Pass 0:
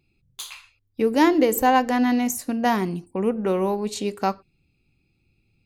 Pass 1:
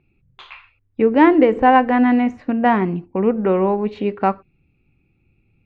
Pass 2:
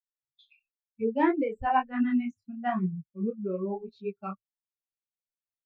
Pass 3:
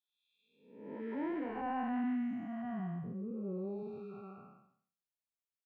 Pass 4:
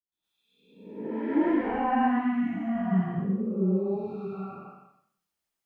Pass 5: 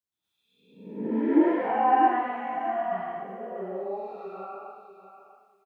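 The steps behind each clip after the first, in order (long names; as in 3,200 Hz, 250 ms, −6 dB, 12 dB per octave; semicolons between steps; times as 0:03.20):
low-pass filter 2,500 Hz 24 dB per octave; level +5.5 dB
spectral dynamics exaggerated over time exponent 3; low-shelf EQ 160 Hz +9 dB; micro pitch shift up and down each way 35 cents; level −5.5 dB
spectrum smeared in time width 445 ms; level −3.5 dB
all-pass dispersion highs, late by 124 ms, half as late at 700 Hz; convolution reverb RT60 0.55 s, pre-delay 105 ms, DRR −11 dB
high-pass filter sweep 87 Hz → 650 Hz, 0:00.66–0:01.70; repeating echo 644 ms, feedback 18%, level −11 dB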